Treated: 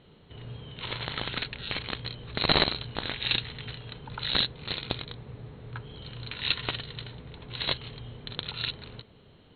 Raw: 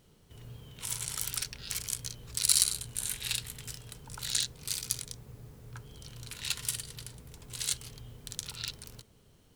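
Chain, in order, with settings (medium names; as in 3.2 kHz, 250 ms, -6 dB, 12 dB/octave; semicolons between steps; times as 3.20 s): tracing distortion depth 0.11 ms; Chebyshev low-pass 4.2 kHz, order 10; bass shelf 63 Hz -9 dB; trim +9 dB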